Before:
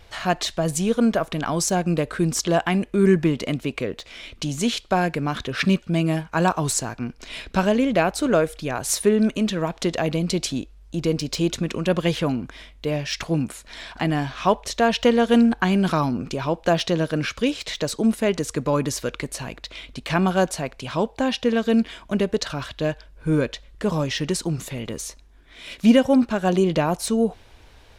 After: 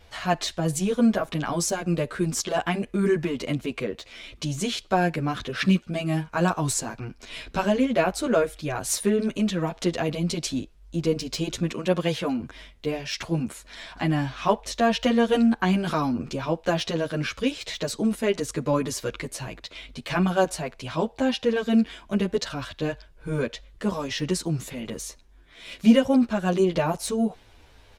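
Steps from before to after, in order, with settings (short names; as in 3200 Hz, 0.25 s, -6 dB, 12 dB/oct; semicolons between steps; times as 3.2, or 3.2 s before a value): 11.7–12.4 HPF 130 Hz 6 dB/oct; endless flanger 9.8 ms -2.9 Hz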